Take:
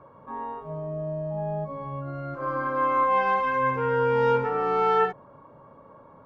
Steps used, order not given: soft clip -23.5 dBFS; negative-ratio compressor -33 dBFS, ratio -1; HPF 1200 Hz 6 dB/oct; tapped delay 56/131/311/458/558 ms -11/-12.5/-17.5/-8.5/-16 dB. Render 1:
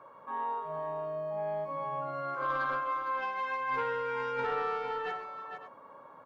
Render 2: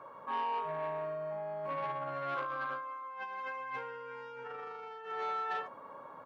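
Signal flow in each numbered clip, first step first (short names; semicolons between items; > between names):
HPF > negative-ratio compressor > soft clip > tapped delay; tapped delay > negative-ratio compressor > soft clip > HPF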